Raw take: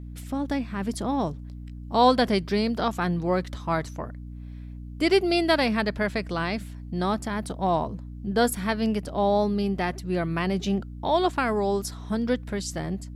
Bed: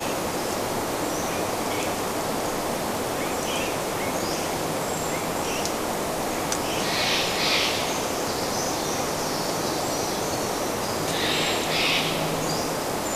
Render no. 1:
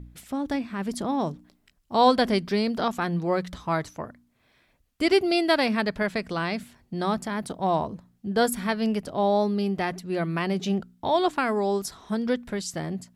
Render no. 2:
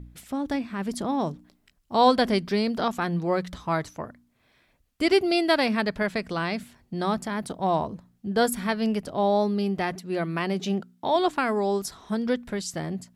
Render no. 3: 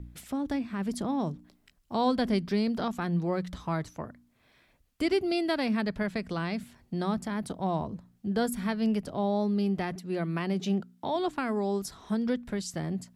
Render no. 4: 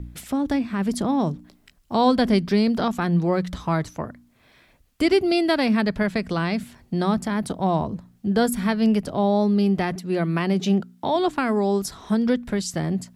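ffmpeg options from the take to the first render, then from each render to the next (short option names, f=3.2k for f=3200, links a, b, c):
-af "bandreject=f=60:t=h:w=4,bandreject=f=120:t=h:w=4,bandreject=f=180:t=h:w=4,bandreject=f=240:t=h:w=4,bandreject=f=300:t=h:w=4"
-filter_complex "[0:a]asettb=1/sr,asplit=3[a][b][c];[a]atrim=end=9.954[d];[b]atrim=start=9.95:end=11.16,asetpts=PTS-STARTPTS,afade=t=in:d=0.004:c=qsin,afade=t=out:st=1.206:d=0.004:c=qsin,highpass=150[e];[c]atrim=start=11.156[f];[d][e]acrossfade=d=0.004:c1=hsin:c2=qsin[g];[g][f]acrossfade=d=0.004:c1=qsin:c2=hsin"
-filter_complex "[0:a]acrossover=split=280[a][b];[b]acompressor=threshold=-43dB:ratio=1.5[c];[a][c]amix=inputs=2:normalize=0"
-af "volume=8dB"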